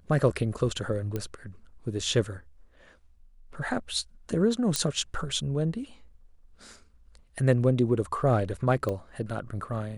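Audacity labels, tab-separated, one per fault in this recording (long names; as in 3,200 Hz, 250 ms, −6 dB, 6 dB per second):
1.160000	1.160000	click −18 dBFS
4.760000	4.760000	click −10 dBFS
8.890000	8.890000	click −19 dBFS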